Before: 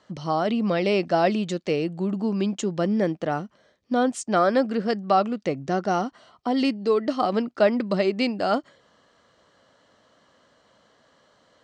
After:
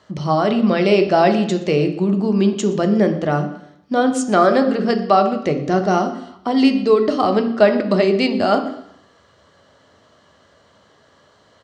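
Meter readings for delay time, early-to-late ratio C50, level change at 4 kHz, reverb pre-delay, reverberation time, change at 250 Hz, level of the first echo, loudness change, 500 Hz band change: 0.121 s, 10.5 dB, +6.5 dB, 3 ms, 0.75 s, +7.5 dB, -20.5 dB, +7.0 dB, +7.5 dB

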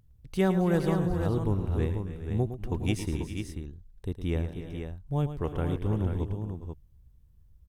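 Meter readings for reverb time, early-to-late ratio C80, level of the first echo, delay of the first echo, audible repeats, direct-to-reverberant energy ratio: none, none, -10.5 dB, 0.11 s, 5, none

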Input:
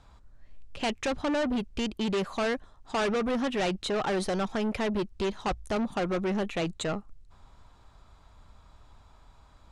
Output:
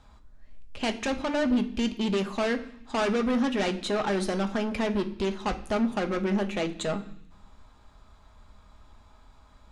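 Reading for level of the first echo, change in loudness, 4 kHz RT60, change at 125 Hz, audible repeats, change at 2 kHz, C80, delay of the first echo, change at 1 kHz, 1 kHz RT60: none, +2.0 dB, 0.90 s, +1.5 dB, none, +1.5 dB, 17.0 dB, none, +0.5 dB, 0.70 s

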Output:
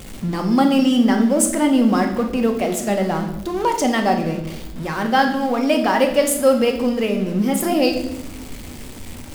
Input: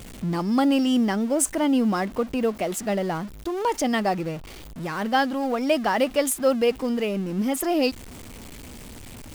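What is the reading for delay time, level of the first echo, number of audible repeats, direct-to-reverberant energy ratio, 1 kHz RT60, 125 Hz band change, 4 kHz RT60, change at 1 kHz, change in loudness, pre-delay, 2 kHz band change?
none, none, none, 3.5 dB, 0.75 s, +5.5 dB, 0.85 s, +5.5 dB, +5.5 dB, 4 ms, +5.0 dB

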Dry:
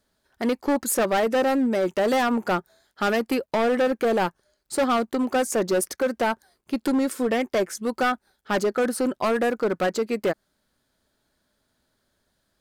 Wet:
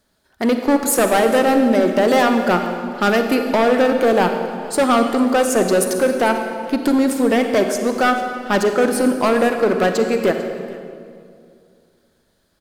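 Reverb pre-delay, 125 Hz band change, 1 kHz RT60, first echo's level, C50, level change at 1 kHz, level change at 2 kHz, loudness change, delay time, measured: 37 ms, +8.0 dB, 2.1 s, -21.0 dB, 6.0 dB, +7.0 dB, +7.0 dB, +7.0 dB, 0.446 s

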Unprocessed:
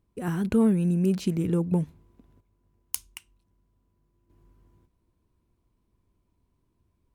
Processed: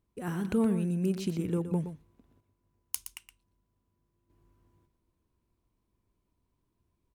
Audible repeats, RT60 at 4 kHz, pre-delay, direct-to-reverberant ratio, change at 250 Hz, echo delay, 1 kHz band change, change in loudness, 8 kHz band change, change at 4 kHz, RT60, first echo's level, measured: 1, none, none, none, -6.0 dB, 0.119 s, -3.5 dB, -5.5 dB, -3.0 dB, -3.0 dB, none, -10.5 dB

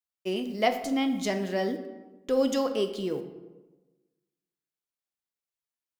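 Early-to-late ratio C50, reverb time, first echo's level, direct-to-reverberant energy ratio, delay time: 9.5 dB, 1.2 s, none, 6.5 dB, none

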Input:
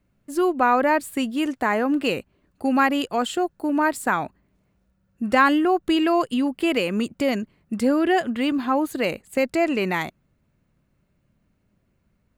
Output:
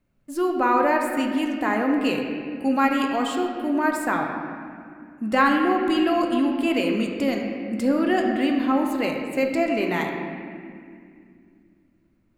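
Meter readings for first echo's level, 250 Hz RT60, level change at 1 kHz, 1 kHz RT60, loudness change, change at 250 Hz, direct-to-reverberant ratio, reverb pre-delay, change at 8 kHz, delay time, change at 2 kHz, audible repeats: none, 3.6 s, -1.0 dB, 2.0 s, -0.5 dB, +0.5 dB, 1.0 dB, 3 ms, -3.0 dB, none, -1.0 dB, none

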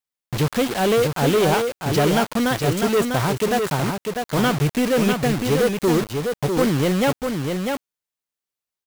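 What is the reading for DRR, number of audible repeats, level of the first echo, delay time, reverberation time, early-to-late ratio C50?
none, 1, -5.0 dB, 0.648 s, none, none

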